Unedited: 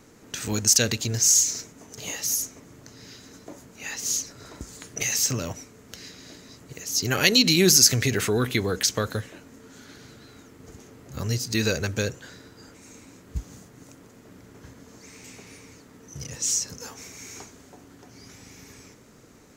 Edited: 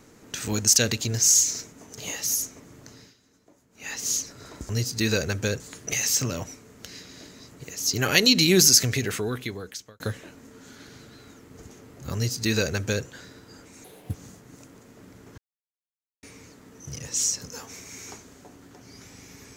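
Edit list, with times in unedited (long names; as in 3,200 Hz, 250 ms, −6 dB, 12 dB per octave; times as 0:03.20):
0:02.93–0:03.91: duck −16 dB, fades 0.21 s
0:07.73–0:09.09: fade out
0:11.23–0:12.14: duplicate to 0:04.69
0:12.93–0:13.42: play speed 164%
0:14.66–0:15.51: silence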